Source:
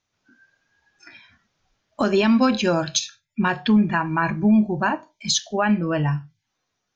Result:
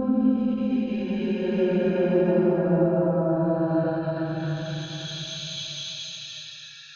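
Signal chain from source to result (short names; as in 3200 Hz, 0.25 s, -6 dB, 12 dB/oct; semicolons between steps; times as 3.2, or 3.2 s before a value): treble ducked by the level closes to 420 Hz, closed at -14.5 dBFS; Paulstretch 12×, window 0.25 s, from 2.49; ending taper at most 100 dB/s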